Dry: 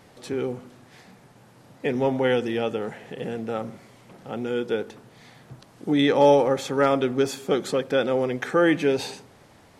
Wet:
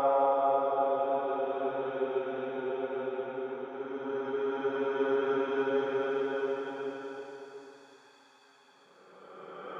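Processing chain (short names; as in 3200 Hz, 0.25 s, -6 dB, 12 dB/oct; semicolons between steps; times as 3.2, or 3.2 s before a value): transient shaper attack +8 dB, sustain -10 dB; LFO band-pass sine 0.4 Hz 770–2300 Hz; Paulstretch 19×, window 0.25 s, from 6.92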